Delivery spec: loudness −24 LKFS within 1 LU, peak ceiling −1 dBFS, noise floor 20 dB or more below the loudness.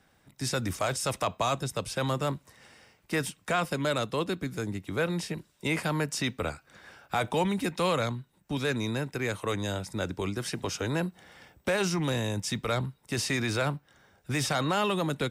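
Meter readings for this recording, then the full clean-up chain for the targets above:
integrated loudness −30.5 LKFS; sample peak −16.0 dBFS; target loudness −24.0 LKFS
→ level +6.5 dB

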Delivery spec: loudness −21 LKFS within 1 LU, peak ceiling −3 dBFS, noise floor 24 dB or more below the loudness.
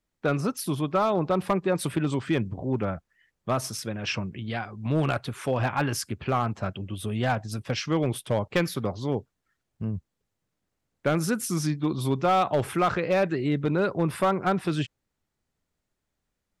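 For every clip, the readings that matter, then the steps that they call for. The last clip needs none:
share of clipped samples 0.4%; peaks flattened at −16.0 dBFS; integrated loudness −27.5 LKFS; sample peak −16.0 dBFS; target loudness −21.0 LKFS
→ clipped peaks rebuilt −16 dBFS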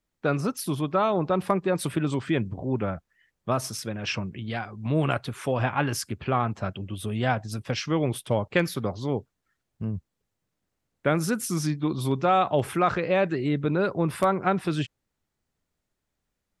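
share of clipped samples 0.0%; integrated loudness −27.0 LKFS; sample peak −7.5 dBFS; target loudness −21.0 LKFS
→ level +6 dB
brickwall limiter −3 dBFS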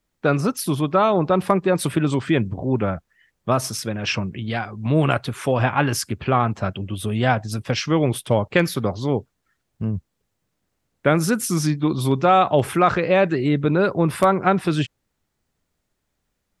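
integrated loudness −21.0 LKFS; sample peak −3.0 dBFS; background noise floor −76 dBFS

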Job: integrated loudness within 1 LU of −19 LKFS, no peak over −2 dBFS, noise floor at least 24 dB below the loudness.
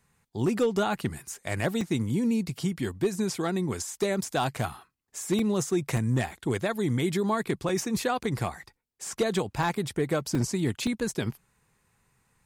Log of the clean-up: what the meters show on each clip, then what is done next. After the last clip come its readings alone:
share of clipped samples 0.4%; peaks flattened at −18.0 dBFS; number of dropouts 8; longest dropout 2.6 ms; integrated loudness −29.0 LKFS; sample peak −18.0 dBFS; target loudness −19.0 LKFS
→ clipped peaks rebuilt −18 dBFS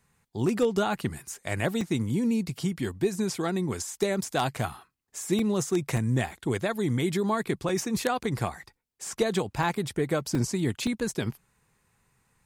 share of clipped samples 0.0%; number of dropouts 8; longest dropout 2.6 ms
→ repair the gap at 0:01.81/0:04.57/0:05.39/0:05.97/0:07.69/0:09.63/0:10.35/0:10.87, 2.6 ms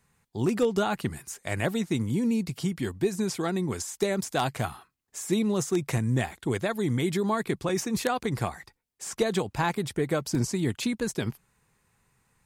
number of dropouts 0; integrated loudness −28.5 LKFS; sample peak −9.0 dBFS; target loudness −19.0 LKFS
→ level +9.5 dB
brickwall limiter −2 dBFS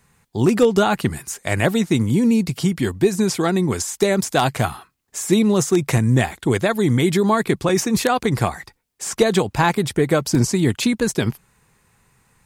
integrated loudness −19.0 LKFS; sample peak −2.0 dBFS; background noise floor −67 dBFS

